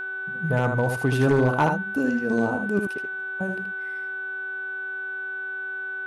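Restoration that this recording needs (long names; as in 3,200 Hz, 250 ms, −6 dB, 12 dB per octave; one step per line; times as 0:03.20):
clipped peaks rebuilt −13 dBFS
hum removal 382.5 Hz, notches 10
notch filter 1,500 Hz, Q 30
echo removal 78 ms −6 dB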